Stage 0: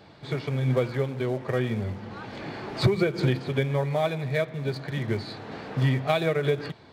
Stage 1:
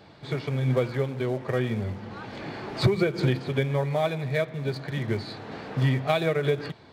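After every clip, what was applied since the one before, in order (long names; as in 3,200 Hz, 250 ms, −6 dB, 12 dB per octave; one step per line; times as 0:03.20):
no processing that can be heard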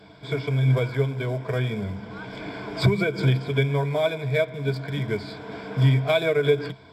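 EQ curve with evenly spaced ripples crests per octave 1.7, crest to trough 12 dB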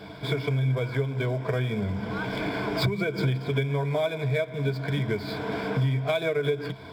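running median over 5 samples
downward compressor 4 to 1, threshold −32 dBFS, peak gain reduction 15 dB
level +7 dB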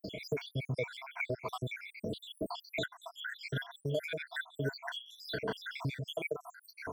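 time-frequency cells dropped at random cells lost 81%
low-shelf EQ 300 Hz −11 dB
multiband upward and downward compressor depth 70%
level +1 dB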